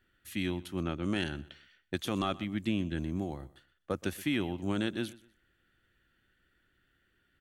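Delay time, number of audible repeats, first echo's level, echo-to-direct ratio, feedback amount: 124 ms, 2, -20.0 dB, -19.5 dB, 28%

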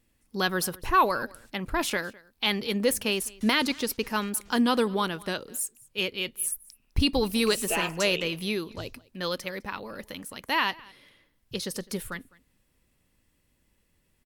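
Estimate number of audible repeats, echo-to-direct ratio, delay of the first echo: 1, -23.5 dB, 206 ms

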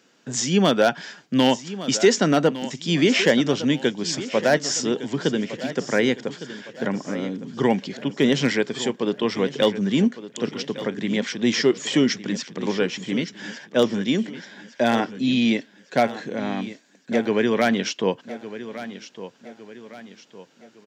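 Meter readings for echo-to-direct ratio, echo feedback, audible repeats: -13.0 dB, 43%, 3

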